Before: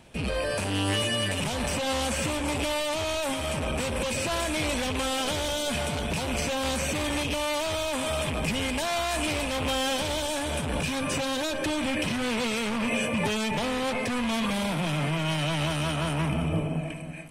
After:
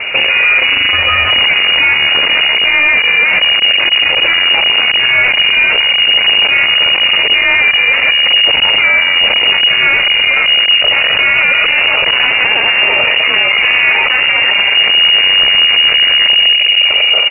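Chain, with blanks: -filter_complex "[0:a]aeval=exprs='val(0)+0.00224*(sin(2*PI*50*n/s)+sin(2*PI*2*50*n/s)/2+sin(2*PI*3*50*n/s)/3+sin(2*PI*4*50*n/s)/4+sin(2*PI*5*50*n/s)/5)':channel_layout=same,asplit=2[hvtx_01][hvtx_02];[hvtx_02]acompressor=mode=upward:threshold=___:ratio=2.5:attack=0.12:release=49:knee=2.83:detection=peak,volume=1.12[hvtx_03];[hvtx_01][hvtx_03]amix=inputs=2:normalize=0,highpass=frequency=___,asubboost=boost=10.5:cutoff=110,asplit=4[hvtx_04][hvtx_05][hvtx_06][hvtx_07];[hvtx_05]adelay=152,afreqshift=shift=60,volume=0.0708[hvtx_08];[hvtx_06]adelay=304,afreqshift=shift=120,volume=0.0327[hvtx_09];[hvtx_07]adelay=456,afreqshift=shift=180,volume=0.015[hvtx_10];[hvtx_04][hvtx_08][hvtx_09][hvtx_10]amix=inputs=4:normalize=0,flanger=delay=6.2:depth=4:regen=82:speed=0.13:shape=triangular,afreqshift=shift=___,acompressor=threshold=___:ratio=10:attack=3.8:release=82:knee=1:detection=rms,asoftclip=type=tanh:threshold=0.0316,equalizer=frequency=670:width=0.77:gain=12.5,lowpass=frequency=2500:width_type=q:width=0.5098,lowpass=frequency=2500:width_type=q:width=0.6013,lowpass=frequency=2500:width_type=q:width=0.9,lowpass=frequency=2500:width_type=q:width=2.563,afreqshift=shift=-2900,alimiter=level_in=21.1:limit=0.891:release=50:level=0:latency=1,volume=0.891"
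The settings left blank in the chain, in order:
0.00891, 41, -110, 0.112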